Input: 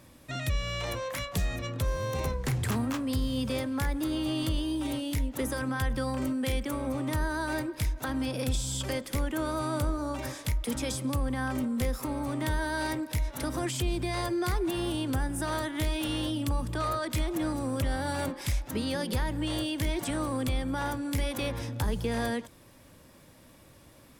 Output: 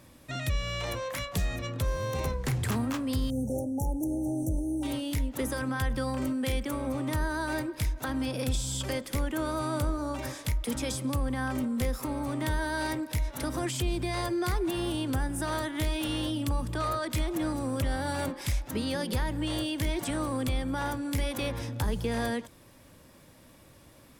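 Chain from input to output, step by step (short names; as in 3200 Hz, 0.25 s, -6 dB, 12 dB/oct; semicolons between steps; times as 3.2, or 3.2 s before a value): 3.3–4.83 brick-wall FIR band-stop 900–5500 Hz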